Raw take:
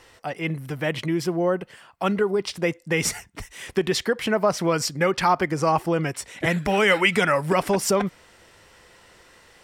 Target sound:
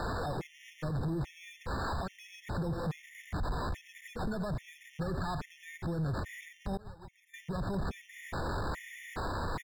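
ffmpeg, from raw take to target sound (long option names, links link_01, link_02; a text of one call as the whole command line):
ffmpeg -i in.wav -filter_complex "[0:a]aeval=exprs='val(0)+0.5*0.0631*sgn(val(0))':channel_layout=same,equalizer=frequency=1100:width_type=o:width=0.77:gain=3.5,acrusher=samples=15:mix=1:aa=0.000001,acrossover=split=130[link_01][link_02];[link_02]acompressor=threshold=-35dB:ratio=10[link_03];[link_01][link_03]amix=inputs=2:normalize=0,aecho=1:1:87:0.178,alimiter=level_in=4.5dB:limit=-24dB:level=0:latency=1:release=80,volume=-4.5dB,asettb=1/sr,asplit=3[link_04][link_05][link_06];[link_04]atrim=end=6.774[link_07];[link_05]atrim=start=6.77:end=7.34,asetpts=PTS-STARTPTS,afade=type=in:duration=0.004:curve=qsin,afade=type=out:start_time=0.566:duration=0.004:curve=qsin,agate=range=-33dB:threshold=-25dB:ratio=3:detection=peak[link_08];[link_06]atrim=start=7.336[link_09];[link_07][link_08]acrossfade=duration=0.004:curve1=hsin:curve2=qsin[link_10];[link_10][link_09]acrossfade=duration=0.004:curve1=qsin:curve2=hsin,asoftclip=type=tanh:threshold=-33dB,aemphasis=mode=reproduction:type=cd,afftfilt=real='re*gt(sin(2*PI*1.2*pts/sr)*(1-2*mod(floor(b*sr/1024/1800),2)),0)':imag='im*gt(sin(2*PI*1.2*pts/sr)*(1-2*mod(floor(b*sr/1024/1800),2)),0)':win_size=1024:overlap=0.75,volume=5.5dB" out.wav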